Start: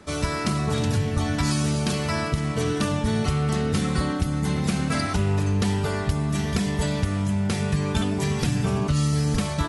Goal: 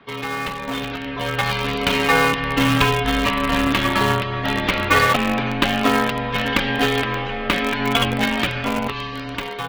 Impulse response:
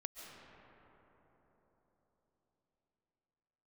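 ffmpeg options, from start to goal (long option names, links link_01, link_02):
-filter_complex "[0:a]asplit=3[link_01][link_02][link_03];[link_01]afade=type=out:start_time=2.37:duration=0.02[link_04];[link_02]asubboost=boost=3.5:cutoff=250,afade=type=in:start_time=2.37:duration=0.02,afade=type=out:start_time=3.65:duration=0.02[link_05];[link_03]afade=type=in:start_time=3.65:duration=0.02[link_06];[link_04][link_05][link_06]amix=inputs=3:normalize=0,crystalizer=i=3:c=0,highpass=frequency=340:width_type=q:width=0.5412,highpass=frequency=340:width_type=q:width=1.307,lowpass=frequency=3400:width_type=q:width=0.5176,lowpass=frequency=3400:width_type=q:width=0.7071,lowpass=frequency=3400:width_type=q:width=1.932,afreqshift=-170,asplit=3[link_07][link_08][link_09];[link_07]afade=type=out:start_time=7.68:duration=0.02[link_10];[link_08]bandreject=frequency=50:width_type=h:width=6,bandreject=frequency=100:width_type=h:width=6,bandreject=frequency=150:width_type=h:width=6,bandreject=frequency=200:width_type=h:width=6,bandreject=frequency=250:width_type=h:width=6,bandreject=frequency=300:width_type=h:width=6,bandreject=frequency=350:width_type=h:width=6,bandreject=frequency=400:width_type=h:width=6,bandreject=frequency=450:width_type=h:width=6,afade=type=in:start_time=7.68:duration=0.02,afade=type=out:start_time=8.87:duration=0.02[link_11];[link_09]afade=type=in:start_time=8.87:duration=0.02[link_12];[link_10][link_11][link_12]amix=inputs=3:normalize=0,asplit=2[link_13][link_14];[link_14]acrusher=bits=3:mix=0:aa=0.000001,volume=-10dB[link_15];[link_13][link_15]amix=inputs=2:normalize=0,dynaudnorm=framelen=570:gausssize=5:maxgain=11.5dB"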